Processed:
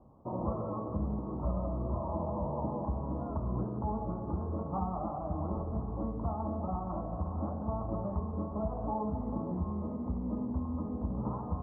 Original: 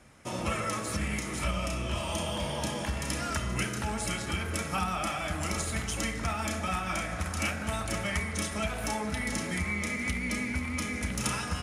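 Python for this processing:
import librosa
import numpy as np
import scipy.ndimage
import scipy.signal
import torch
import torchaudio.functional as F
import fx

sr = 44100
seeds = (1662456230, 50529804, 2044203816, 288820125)

y = scipy.signal.sosfilt(scipy.signal.cheby1(6, 1.0, 1100.0, 'lowpass', fs=sr, output='sos'), x)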